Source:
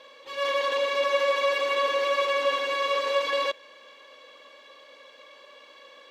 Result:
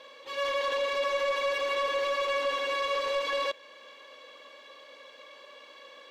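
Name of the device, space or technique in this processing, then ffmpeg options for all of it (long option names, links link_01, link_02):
soft clipper into limiter: -af "asoftclip=type=tanh:threshold=-19.5dB,alimiter=limit=-23dB:level=0:latency=1:release=346"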